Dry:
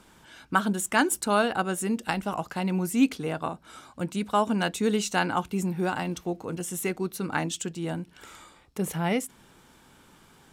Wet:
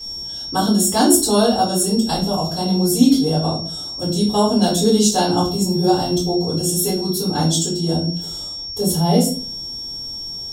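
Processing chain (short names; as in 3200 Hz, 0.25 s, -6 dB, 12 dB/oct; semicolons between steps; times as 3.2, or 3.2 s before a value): EQ curve 670 Hz 0 dB, 1200 Hz -13 dB, 2400 Hz -21 dB, 3400 Hz +2 dB, 12000 Hz +5 dB; whine 5500 Hz -37 dBFS; shoebox room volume 32 m³, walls mixed, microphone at 2.6 m; gain -2 dB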